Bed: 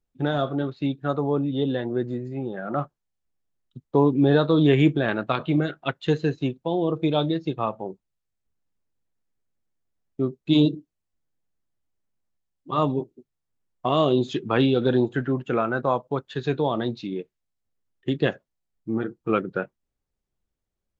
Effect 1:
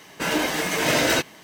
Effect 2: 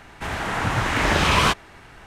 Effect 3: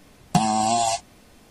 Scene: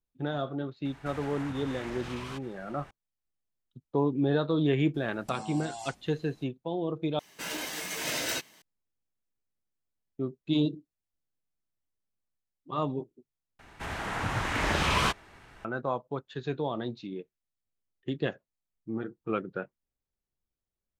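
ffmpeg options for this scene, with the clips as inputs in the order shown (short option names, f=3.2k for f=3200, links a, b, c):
-filter_complex "[2:a]asplit=2[a][b];[0:a]volume=-8dB[c];[a]acompressor=threshold=-31dB:ratio=6:attack=3.2:release=140:knee=1:detection=peak[d];[3:a]acompressor=threshold=-27dB:ratio=6:attack=3.2:release=140:knee=1:detection=peak[e];[1:a]highshelf=f=2.3k:g=10[f];[c]asplit=3[g][h][i];[g]atrim=end=7.194[j];[f]atrim=end=1.43,asetpts=PTS-STARTPTS,volume=-16dB[k];[h]atrim=start=8.616:end=13.594[l];[b]atrim=end=2.06,asetpts=PTS-STARTPTS,volume=-8dB[m];[i]atrim=start=15.646[n];[d]atrim=end=2.06,asetpts=PTS-STARTPTS,volume=-8.5dB,afade=t=in:d=0.004:c=hsin,afade=t=out:st=2.056:d=0.004:c=hsin,adelay=850[o];[e]atrim=end=1.5,asetpts=PTS-STARTPTS,volume=-10.5dB,afade=t=in:d=0.004:c=hsin,afade=t=out:st=1.496:d=0.004:c=hsin,adelay=4940[p];[j][k]acrossfade=d=0.004:c1=hsin:c2=hsin[q];[q][l]acrossfade=d=0.004:c1=hsin:c2=hsin[r];[r][m]acrossfade=d=0.004:c1=hsin:c2=hsin[s];[s][n]acrossfade=d=0.004:c1=hsin:c2=hsin[t];[t][o][p]amix=inputs=3:normalize=0"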